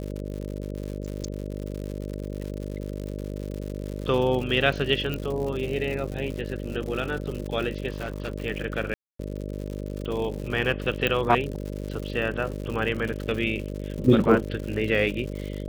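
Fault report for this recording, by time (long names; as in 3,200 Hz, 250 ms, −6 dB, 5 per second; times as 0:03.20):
mains buzz 50 Hz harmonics 12 −33 dBFS
surface crackle 140 per second −32 dBFS
0:05.14: click −16 dBFS
0:07.90–0:08.32: clipping −26 dBFS
0:08.94–0:09.19: drop-out 254 ms
0:11.07: click −11 dBFS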